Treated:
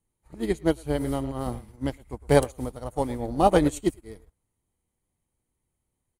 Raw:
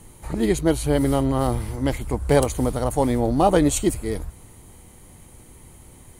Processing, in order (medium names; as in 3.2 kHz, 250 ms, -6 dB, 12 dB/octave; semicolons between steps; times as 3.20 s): 1.46–1.90 s: peaking EQ 200 Hz +8.5 dB 0.51 oct; speakerphone echo 110 ms, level -11 dB; upward expansion 2.5:1, over -36 dBFS